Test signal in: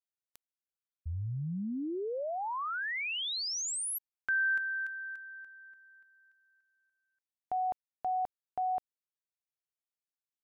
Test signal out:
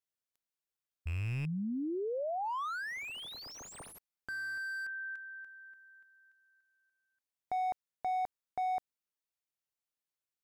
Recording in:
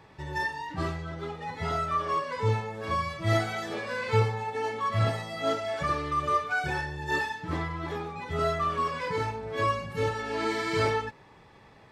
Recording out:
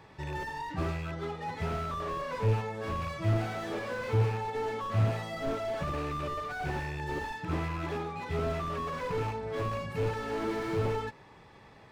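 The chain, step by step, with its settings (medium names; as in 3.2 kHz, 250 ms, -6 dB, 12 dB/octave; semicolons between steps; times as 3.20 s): rattle on loud lows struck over -33 dBFS, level -23 dBFS; slew-rate limiter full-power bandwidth 20 Hz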